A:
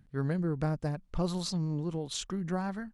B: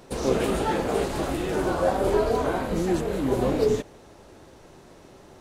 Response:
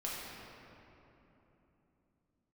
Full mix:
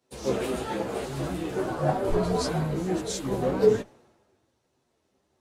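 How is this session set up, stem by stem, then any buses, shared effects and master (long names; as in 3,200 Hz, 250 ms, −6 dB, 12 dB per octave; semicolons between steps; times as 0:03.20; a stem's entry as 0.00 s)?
+3.0 dB, 0.95 s, no send, parametric band 2,900 Hz −8 dB 0.82 octaves; brickwall limiter −24.5 dBFS, peak gain reduction 5 dB
−1.5 dB, 0.00 s, no send, high-pass filter 55 Hz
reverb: not used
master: multi-voice chorus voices 4, 0.46 Hz, delay 12 ms, depth 4 ms; multiband upward and downward expander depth 70%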